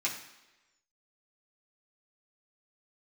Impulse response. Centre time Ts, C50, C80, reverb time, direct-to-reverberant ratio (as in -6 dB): 26 ms, 7.5 dB, 10.0 dB, 1.1 s, -5.5 dB